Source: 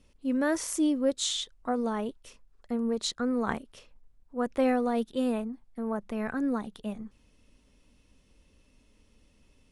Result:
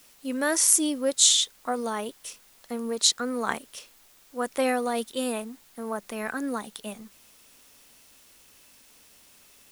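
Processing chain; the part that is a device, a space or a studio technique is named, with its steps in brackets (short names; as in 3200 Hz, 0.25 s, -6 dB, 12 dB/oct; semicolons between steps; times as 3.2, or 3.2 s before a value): turntable without a phono preamp (RIAA curve recording; white noise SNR 28 dB); gain +3.5 dB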